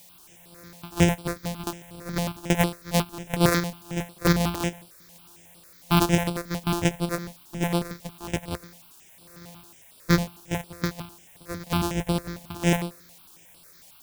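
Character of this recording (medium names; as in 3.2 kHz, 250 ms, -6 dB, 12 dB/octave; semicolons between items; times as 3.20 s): a buzz of ramps at a fixed pitch in blocks of 256 samples; tremolo saw down 1.2 Hz, depth 90%; a quantiser's noise floor 10-bit, dither triangular; notches that jump at a steady rate 11 Hz 360–6500 Hz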